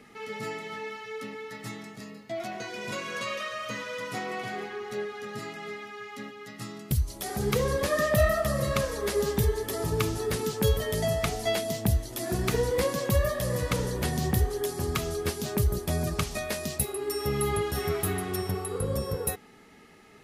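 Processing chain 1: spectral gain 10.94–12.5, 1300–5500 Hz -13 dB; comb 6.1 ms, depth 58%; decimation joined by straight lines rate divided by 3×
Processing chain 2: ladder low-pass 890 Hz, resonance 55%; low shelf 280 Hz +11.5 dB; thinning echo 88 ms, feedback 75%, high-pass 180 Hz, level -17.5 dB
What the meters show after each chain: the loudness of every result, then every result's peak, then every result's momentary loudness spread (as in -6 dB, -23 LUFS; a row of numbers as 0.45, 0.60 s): -29.5, -32.0 LUFS; -10.5, -12.0 dBFS; 13, 16 LU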